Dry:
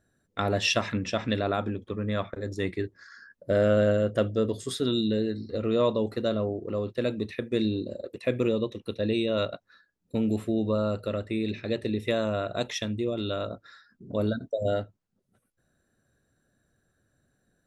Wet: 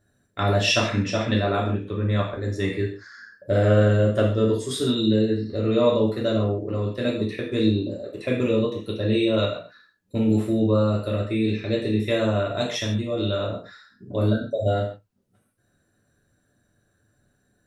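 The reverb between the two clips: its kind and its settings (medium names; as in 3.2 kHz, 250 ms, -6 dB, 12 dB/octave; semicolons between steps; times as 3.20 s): gated-style reverb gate 180 ms falling, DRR -3 dB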